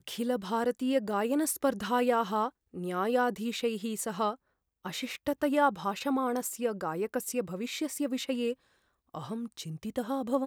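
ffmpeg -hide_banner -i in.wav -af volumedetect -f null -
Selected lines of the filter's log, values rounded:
mean_volume: -31.6 dB
max_volume: -13.3 dB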